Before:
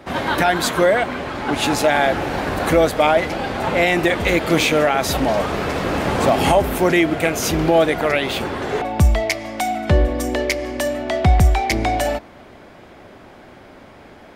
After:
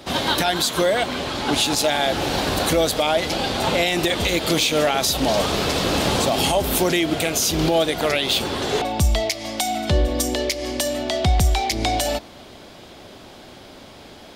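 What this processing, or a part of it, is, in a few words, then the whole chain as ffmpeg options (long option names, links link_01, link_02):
over-bright horn tweeter: -af "highshelf=frequency=2700:width_type=q:width=1.5:gain=9,alimiter=limit=-9.5dB:level=0:latency=1:release=169"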